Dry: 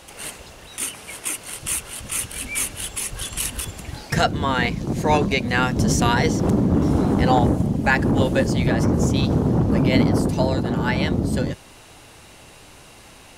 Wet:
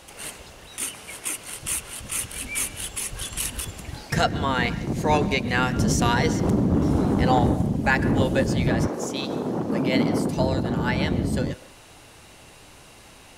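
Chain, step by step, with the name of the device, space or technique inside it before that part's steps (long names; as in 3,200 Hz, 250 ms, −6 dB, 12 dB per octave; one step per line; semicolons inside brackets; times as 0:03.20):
0:08.86–0:10.36: high-pass filter 450 Hz → 140 Hz 12 dB per octave
filtered reverb send (on a send: high-pass filter 530 Hz + low-pass filter 4,800 Hz + convolution reverb RT60 0.65 s, pre-delay 113 ms, DRR 16 dB)
on the sum: level −2.5 dB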